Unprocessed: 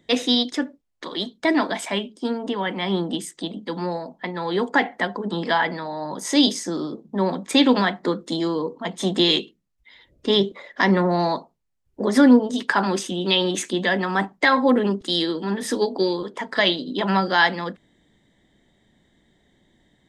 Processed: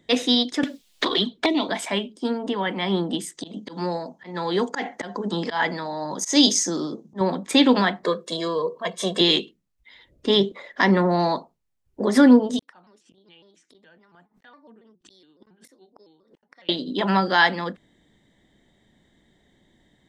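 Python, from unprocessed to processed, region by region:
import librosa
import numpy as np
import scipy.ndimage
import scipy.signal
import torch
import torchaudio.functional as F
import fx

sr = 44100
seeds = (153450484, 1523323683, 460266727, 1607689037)

y = fx.chain(x, sr, fx.env_flanger(rest_ms=7.1, full_db=-20.0),
    fx.peak_eq(hz=3500.0, db=7.5, octaves=0.99),
    fx.band_squash(depth_pct=100), at=(0.63, 1.69))
y = fx.chain(y, sr, fx.peak_eq(hz=6300.0, db=12.5, octaves=0.56),
    fx.auto_swell(attack_ms=124.0),
    fx.highpass(hz=61.0, slope=12), at=(3.37, 7.21))
y = fx.chain(y, sr, fx.highpass(hz=260.0, slope=6),
    fx.comb(ms=1.8, depth=0.8), at=(8.03, 9.21))
y = fx.chain(y, sr, fx.gate_flip(shuts_db=-19.0, range_db=-42),
    fx.over_compress(threshold_db=-52.0, ratio=-0.5),
    fx.vibrato_shape(shape='square', rate_hz=3.6, depth_cents=160.0), at=(12.59, 16.69))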